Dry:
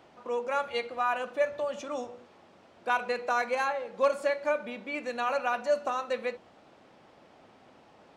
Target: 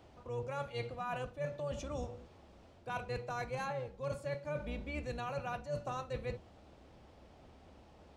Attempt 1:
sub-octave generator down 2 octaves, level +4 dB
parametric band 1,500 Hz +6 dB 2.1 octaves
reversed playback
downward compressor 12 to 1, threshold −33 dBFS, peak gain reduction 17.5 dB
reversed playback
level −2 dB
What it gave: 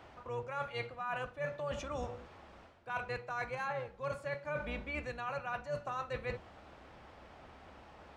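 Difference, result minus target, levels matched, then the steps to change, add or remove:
2,000 Hz band +4.5 dB
change: parametric band 1,500 Hz −5.5 dB 2.1 octaves

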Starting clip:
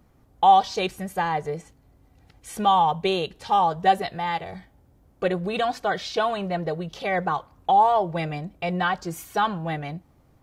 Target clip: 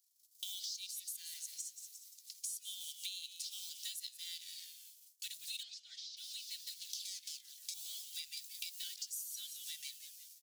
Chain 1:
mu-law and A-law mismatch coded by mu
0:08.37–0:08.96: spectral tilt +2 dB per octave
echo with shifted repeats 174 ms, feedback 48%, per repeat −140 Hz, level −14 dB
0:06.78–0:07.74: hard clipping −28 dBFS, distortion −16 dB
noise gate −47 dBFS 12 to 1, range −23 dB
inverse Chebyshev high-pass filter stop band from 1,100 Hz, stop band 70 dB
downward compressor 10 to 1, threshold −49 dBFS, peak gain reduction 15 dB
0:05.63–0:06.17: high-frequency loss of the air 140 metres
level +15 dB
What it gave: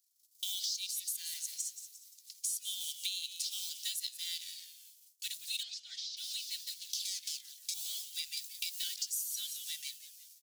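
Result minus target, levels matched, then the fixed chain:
downward compressor: peak gain reduction −6.5 dB
mu-law and A-law mismatch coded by mu
0:08.37–0:08.96: spectral tilt +2 dB per octave
echo with shifted repeats 174 ms, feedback 48%, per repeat −140 Hz, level −14 dB
0:06.78–0:07.74: hard clipping −28 dBFS, distortion −16 dB
noise gate −47 dBFS 12 to 1, range −23 dB
inverse Chebyshev high-pass filter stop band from 1,100 Hz, stop band 70 dB
downward compressor 10 to 1, threshold −56.5 dBFS, peak gain reduction 22 dB
0:05.63–0:06.17: high-frequency loss of the air 140 metres
level +15 dB

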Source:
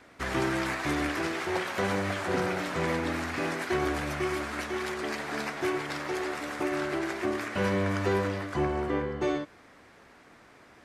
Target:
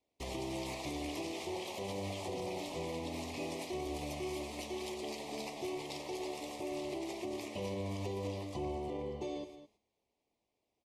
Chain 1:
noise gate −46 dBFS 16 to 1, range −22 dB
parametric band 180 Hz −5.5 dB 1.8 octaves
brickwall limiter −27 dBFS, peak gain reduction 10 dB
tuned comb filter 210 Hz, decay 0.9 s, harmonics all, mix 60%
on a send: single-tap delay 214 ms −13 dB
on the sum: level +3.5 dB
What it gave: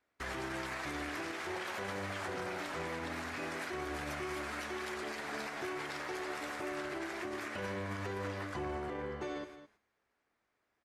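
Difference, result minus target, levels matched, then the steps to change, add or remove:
2,000 Hz band +8.5 dB
add after noise gate: Butterworth band-reject 1,500 Hz, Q 0.87

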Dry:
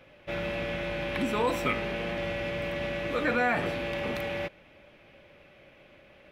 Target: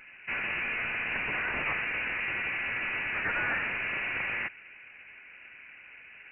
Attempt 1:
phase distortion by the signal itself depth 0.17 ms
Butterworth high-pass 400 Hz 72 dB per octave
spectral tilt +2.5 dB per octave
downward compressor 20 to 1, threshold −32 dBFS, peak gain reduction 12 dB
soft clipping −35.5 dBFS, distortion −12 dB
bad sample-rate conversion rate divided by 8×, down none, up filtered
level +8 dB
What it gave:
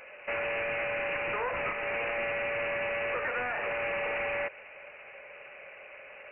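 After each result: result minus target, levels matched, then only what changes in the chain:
500 Hz band +14.0 dB; downward compressor: peak gain reduction +12 dB
change: Butterworth high-pass 1,400 Hz 72 dB per octave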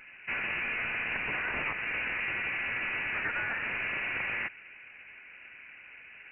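downward compressor: peak gain reduction +10 dB
remove: downward compressor 20 to 1, threshold −32 dBFS, peak gain reduction 10 dB

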